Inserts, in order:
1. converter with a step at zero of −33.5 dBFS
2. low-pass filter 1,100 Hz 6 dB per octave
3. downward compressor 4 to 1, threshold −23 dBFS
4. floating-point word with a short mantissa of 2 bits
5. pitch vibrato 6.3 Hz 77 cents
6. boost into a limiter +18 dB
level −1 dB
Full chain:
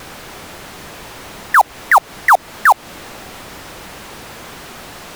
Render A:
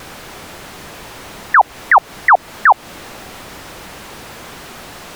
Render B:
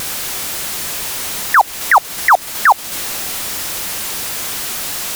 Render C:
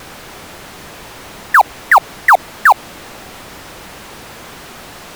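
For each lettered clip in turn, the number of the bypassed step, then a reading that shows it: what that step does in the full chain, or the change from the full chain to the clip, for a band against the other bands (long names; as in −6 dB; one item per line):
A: 4, distortion level −20 dB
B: 2, 8 kHz band +12.5 dB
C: 3, change in crest factor −1.5 dB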